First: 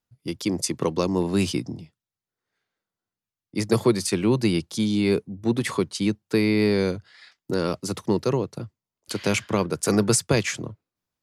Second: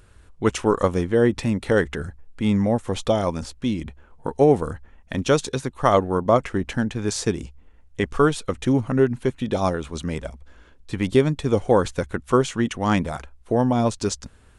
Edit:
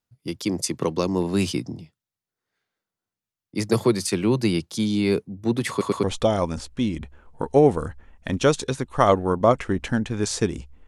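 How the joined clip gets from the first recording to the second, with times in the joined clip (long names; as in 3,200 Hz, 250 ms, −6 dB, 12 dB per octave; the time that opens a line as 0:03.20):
first
0:05.70: stutter in place 0.11 s, 3 plays
0:06.03: continue with second from 0:02.88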